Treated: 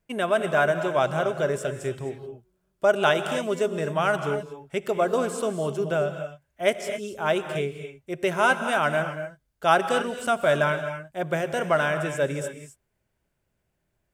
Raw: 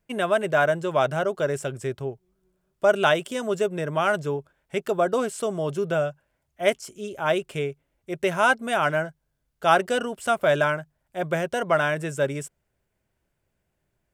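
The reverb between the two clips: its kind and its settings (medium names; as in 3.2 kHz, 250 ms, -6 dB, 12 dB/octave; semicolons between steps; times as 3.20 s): gated-style reverb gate 290 ms rising, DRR 8 dB; trim -1 dB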